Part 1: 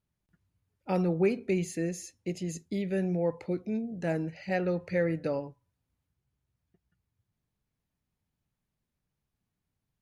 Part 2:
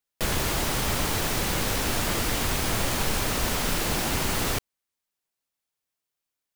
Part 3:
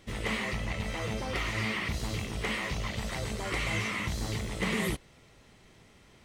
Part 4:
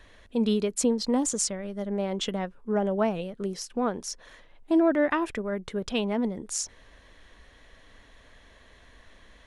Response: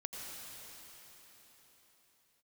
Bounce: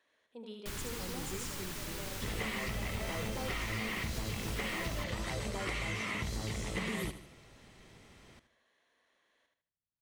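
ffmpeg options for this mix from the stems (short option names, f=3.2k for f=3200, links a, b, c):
-filter_complex "[0:a]adelay=100,volume=-18.5dB[a];[1:a]equalizer=f=620:w=2.1:g=-12.5,adelay=450,volume=-14.5dB,asplit=2[b][c];[c]volume=-13.5dB[d];[2:a]adelay=2150,volume=0dB,asplit=2[e][f];[f]volume=-15dB[g];[3:a]highpass=330,volume=-18.5dB,asplit=2[h][i];[i]volume=-4.5dB[j];[d][g][j]amix=inputs=3:normalize=0,aecho=0:1:77|154|231|308|385:1|0.36|0.13|0.0467|0.0168[k];[a][b][e][h][k]amix=inputs=5:normalize=0,acompressor=threshold=-33dB:ratio=6"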